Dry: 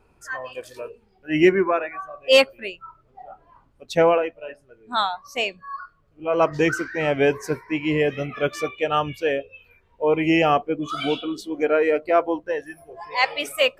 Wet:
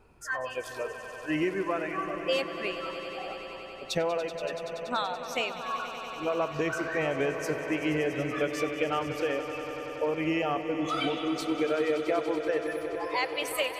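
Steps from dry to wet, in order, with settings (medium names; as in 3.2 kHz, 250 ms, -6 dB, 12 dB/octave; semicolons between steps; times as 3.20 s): compression, threshold -27 dBFS, peak gain reduction 16 dB; echo with a slow build-up 95 ms, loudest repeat 5, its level -14 dB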